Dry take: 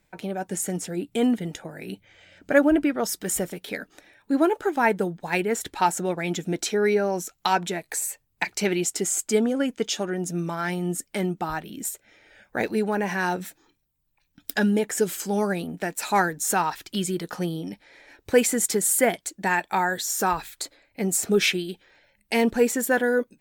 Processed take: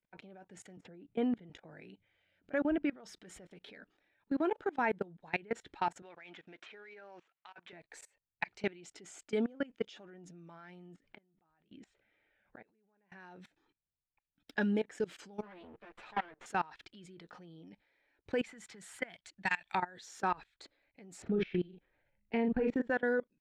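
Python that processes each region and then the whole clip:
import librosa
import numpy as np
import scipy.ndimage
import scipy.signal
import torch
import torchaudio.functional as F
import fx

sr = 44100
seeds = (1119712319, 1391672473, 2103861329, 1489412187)

y = fx.chain(x, sr, fx.high_shelf(hz=2900.0, db=-11.0),
    fx.band_squash(depth_pct=40), at=(0.77, 1.5))
y = fx.chain(y, sr, fx.median_filter(points=9),
    fx.bandpass_q(hz=2400.0, q=0.71),
    fx.over_compress(threshold_db=-33.0, ratio=-0.5), at=(6.02, 7.73))
y = fx.chain(y, sr, fx.lowpass(hz=3600.0, slope=12),
    fx.gate_flip(shuts_db=-26.0, range_db=-26),
    fx.sustainer(db_per_s=130.0), at=(10.94, 13.12))
y = fx.chain(y, sr, fx.lower_of_two(delay_ms=9.0),
    fx.bass_treble(bass_db=-10, treble_db=-12), at=(15.42, 16.46))
y = fx.chain(y, sr, fx.peak_eq(hz=390.0, db=-12.0, octaves=1.7),
    fx.band_squash(depth_pct=100), at=(18.44, 19.75))
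y = fx.chain(y, sr, fx.lowpass(hz=3400.0, slope=12),
    fx.tilt_eq(slope=-2.5),
    fx.doubler(ms=39.0, db=-4.5), at=(21.22, 22.9))
y = scipy.signal.sosfilt(scipy.signal.cheby1(2, 1.0, 3100.0, 'lowpass', fs=sr, output='sos'), y)
y = fx.level_steps(y, sr, step_db=23)
y = y * 10.0 ** (-7.0 / 20.0)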